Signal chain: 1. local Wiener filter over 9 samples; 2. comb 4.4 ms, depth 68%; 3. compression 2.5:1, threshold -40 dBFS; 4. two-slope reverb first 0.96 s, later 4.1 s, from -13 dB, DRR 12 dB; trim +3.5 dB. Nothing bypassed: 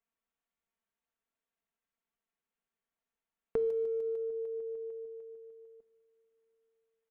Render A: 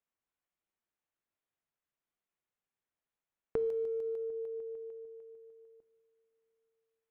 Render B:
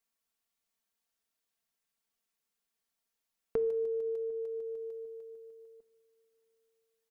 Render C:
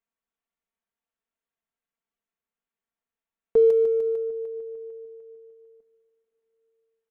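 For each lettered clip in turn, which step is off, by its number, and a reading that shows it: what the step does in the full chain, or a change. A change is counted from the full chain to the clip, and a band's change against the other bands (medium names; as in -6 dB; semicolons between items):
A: 2, crest factor change +2.0 dB; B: 1, momentary loudness spread change +1 LU; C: 3, mean gain reduction 5.0 dB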